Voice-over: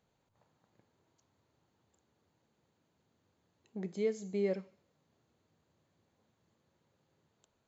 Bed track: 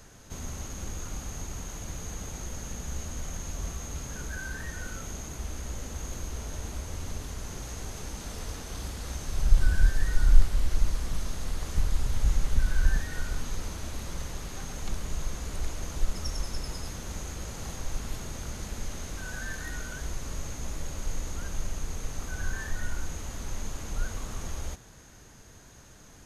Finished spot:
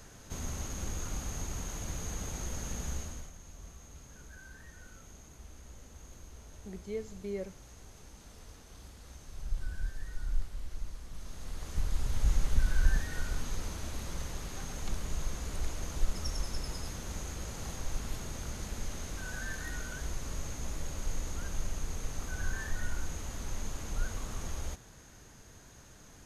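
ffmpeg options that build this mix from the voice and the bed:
ffmpeg -i stem1.wav -i stem2.wav -filter_complex "[0:a]adelay=2900,volume=-5dB[link_01];[1:a]volume=11.5dB,afade=type=out:start_time=2.86:duration=0.46:silence=0.199526,afade=type=in:start_time=11.1:duration=1.24:silence=0.251189[link_02];[link_01][link_02]amix=inputs=2:normalize=0" out.wav

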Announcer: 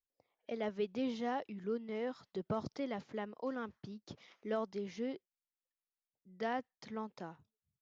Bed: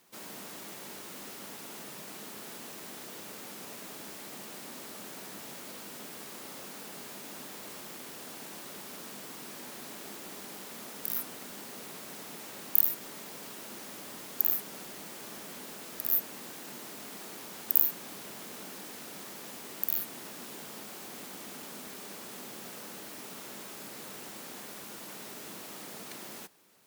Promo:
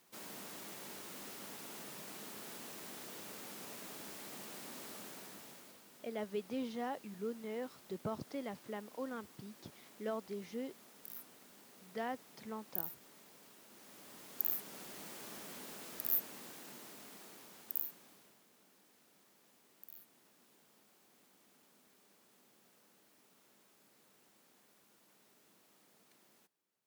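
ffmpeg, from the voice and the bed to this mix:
ffmpeg -i stem1.wav -i stem2.wav -filter_complex "[0:a]adelay=5550,volume=-3dB[link_01];[1:a]volume=6.5dB,afade=type=out:start_time=4.93:duration=0.88:silence=0.266073,afade=type=in:start_time=13.69:duration=1.35:silence=0.281838,afade=type=out:start_time=15.88:duration=2.55:silence=0.112202[link_02];[link_01][link_02]amix=inputs=2:normalize=0" out.wav

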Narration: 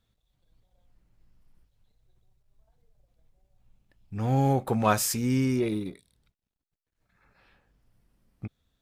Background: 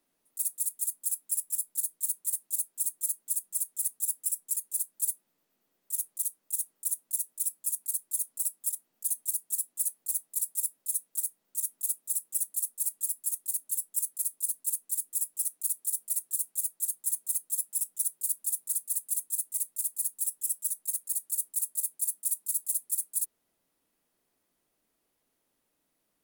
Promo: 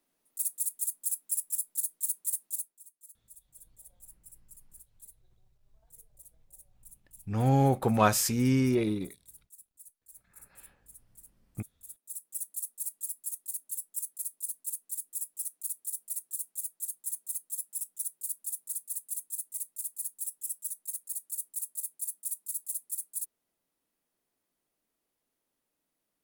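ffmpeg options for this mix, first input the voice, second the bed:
ffmpeg -i stem1.wav -i stem2.wav -filter_complex "[0:a]adelay=3150,volume=0dB[link_01];[1:a]volume=16.5dB,afade=type=out:start_time=2.44:duration=0.36:silence=0.0794328,afade=type=in:start_time=11.78:duration=0.72:silence=0.133352[link_02];[link_01][link_02]amix=inputs=2:normalize=0" out.wav

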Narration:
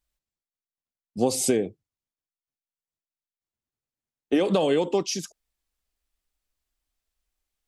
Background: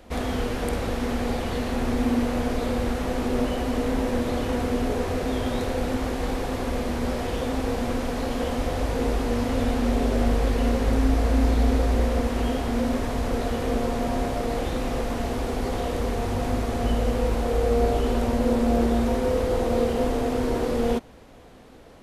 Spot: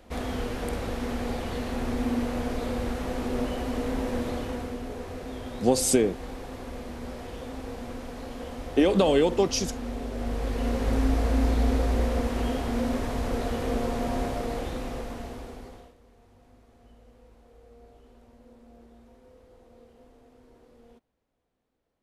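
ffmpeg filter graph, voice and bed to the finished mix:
ffmpeg -i stem1.wav -i stem2.wav -filter_complex "[0:a]adelay=4450,volume=1dB[link_01];[1:a]volume=3.5dB,afade=type=out:start_time=4.25:duration=0.54:silence=0.473151,afade=type=in:start_time=10.13:duration=0.84:silence=0.398107,afade=type=out:start_time=14.22:duration=1.73:silence=0.0375837[link_02];[link_01][link_02]amix=inputs=2:normalize=0" out.wav

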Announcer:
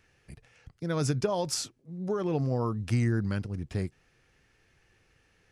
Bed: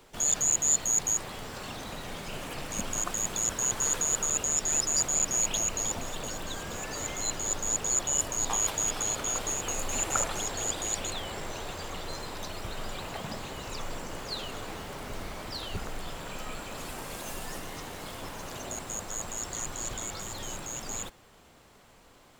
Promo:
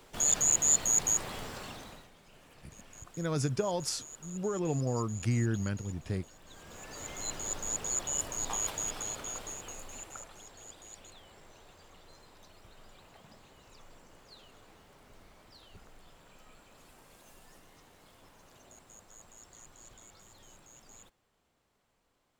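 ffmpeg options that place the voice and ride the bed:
ffmpeg -i stem1.wav -i stem2.wav -filter_complex "[0:a]adelay=2350,volume=-3dB[link_01];[1:a]volume=14.5dB,afade=type=out:start_time=1.38:duration=0.72:silence=0.1,afade=type=in:start_time=6.41:duration=0.92:silence=0.177828,afade=type=out:start_time=8.68:duration=1.53:silence=0.211349[link_02];[link_01][link_02]amix=inputs=2:normalize=0" out.wav

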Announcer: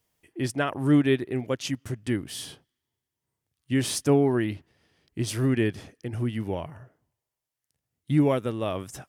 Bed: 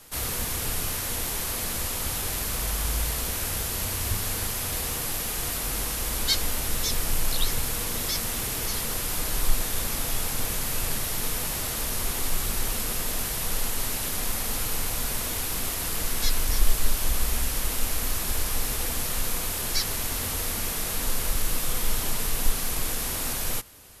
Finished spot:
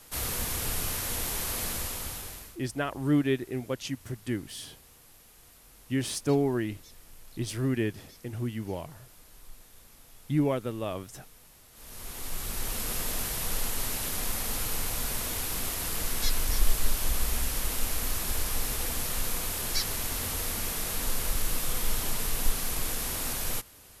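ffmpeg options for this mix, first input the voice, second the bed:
ffmpeg -i stem1.wav -i stem2.wav -filter_complex "[0:a]adelay=2200,volume=-4.5dB[link_01];[1:a]volume=20.5dB,afade=type=out:start_time=1.65:duration=0.92:silence=0.0668344,afade=type=in:start_time=11.72:duration=1.24:silence=0.0707946[link_02];[link_01][link_02]amix=inputs=2:normalize=0" out.wav

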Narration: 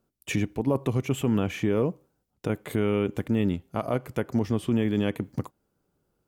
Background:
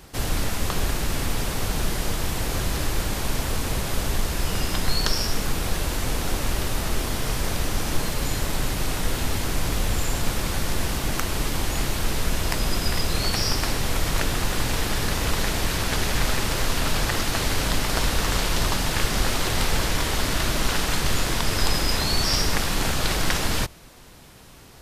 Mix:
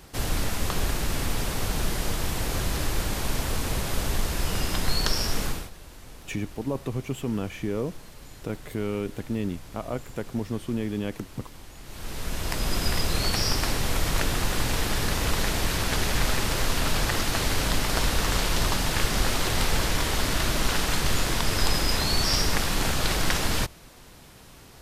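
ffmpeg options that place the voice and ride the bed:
ffmpeg -i stem1.wav -i stem2.wav -filter_complex "[0:a]adelay=6000,volume=-4.5dB[link_01];[1:a]volume=16.5dB,afade=type=out:start_time=5.44:duration=0.26:silence=0.125893,afade=type=in:start_time=11.83:duration=1:silence=0.11885[link_02];[link_01][link_02]amix=inputs=2:normalize=0" out.wav

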